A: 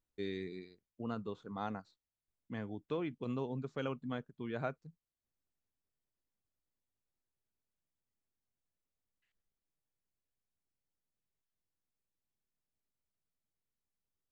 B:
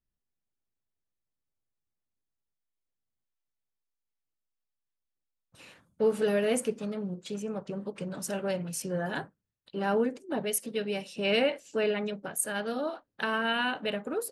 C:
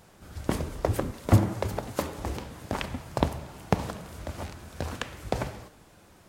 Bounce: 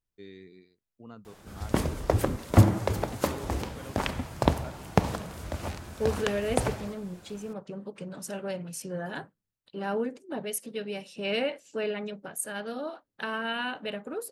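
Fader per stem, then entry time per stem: −7.0, −3.0, +2.0 decibels; 0.00, 0.00, 1.25 seconds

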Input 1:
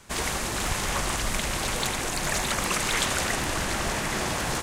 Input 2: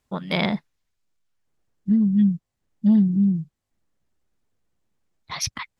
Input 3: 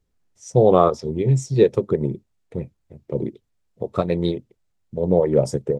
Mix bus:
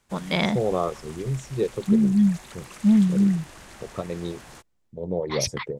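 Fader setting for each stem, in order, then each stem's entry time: −17.5, −0.5, −10.0 decibels; 0.00, 0.00, 0.00 seconds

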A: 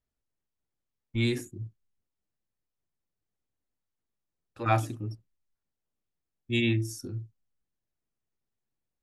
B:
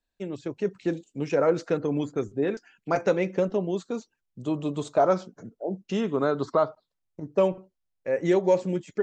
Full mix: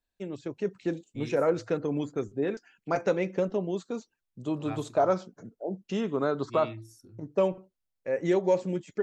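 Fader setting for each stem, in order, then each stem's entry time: −15.0, −3.0 decibels; 0.00, 0.00 seconds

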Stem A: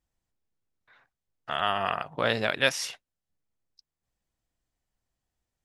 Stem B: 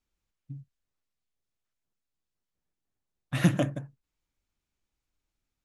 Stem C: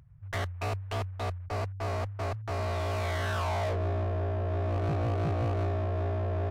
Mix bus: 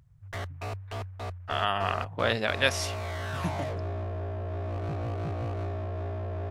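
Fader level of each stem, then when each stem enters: −1.0, −11.0, −3.5 decibels; 0.00, 0.00, 0.00 seconds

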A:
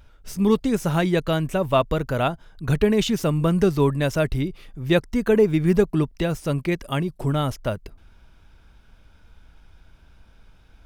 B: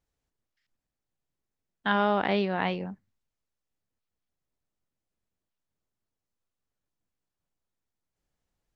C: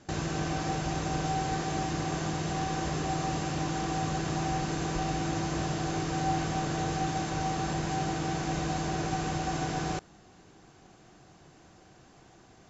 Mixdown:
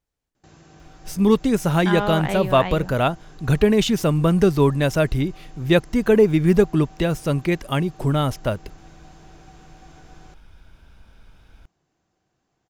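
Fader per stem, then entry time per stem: +2.5, 0.0, −17.5 decibels; 0.80, 0.00, 0.35 seconds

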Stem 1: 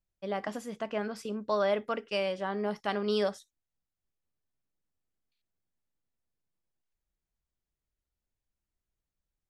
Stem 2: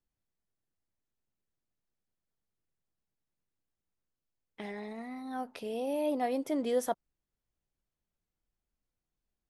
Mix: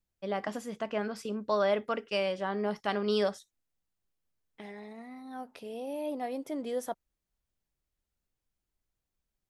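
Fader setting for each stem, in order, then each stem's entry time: +0.5, −4.0 decibels; 0.00, 0.00 seconds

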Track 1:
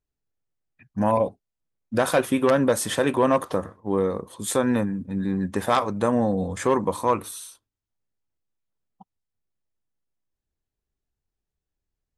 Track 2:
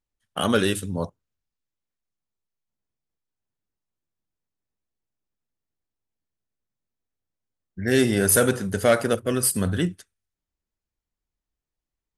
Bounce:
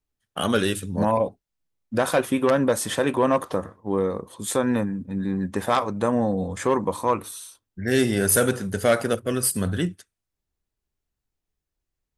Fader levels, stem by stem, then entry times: −0.5, −1.0 decibels; 0.00, 0.00 seconds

